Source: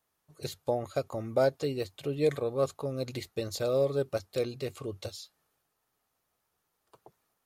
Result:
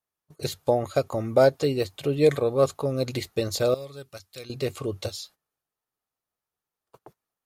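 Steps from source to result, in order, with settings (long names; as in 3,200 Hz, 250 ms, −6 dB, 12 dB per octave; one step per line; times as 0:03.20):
noise gate −57 dBFS, range −18 dB
0:03.74–0:04.50: guitar amp tone stack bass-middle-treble 5-5-5
level +7.5 dB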